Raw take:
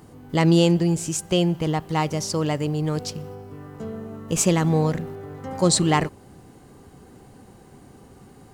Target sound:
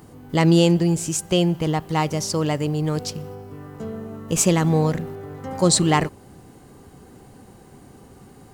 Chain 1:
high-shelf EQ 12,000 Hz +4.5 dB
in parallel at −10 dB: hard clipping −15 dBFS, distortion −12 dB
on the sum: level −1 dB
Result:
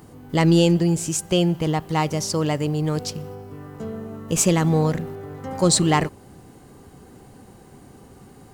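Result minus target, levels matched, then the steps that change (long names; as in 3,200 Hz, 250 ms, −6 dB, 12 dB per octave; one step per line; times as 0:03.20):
hard clipping: distortion +18 dB
change: hard clipping −8.5 dBFS, distortion −30 dB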